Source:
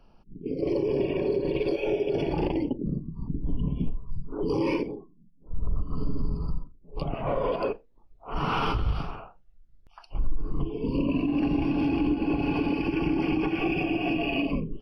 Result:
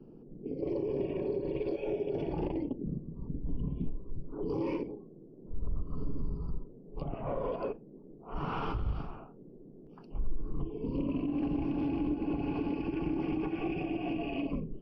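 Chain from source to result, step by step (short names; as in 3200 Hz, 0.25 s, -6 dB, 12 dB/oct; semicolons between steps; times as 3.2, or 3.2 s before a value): high shelf 2000 Hz -11 dB; band noise 130–430 Hz -46 dBFS; Doppler distortion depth 0.14 ms; gain -6.5 dB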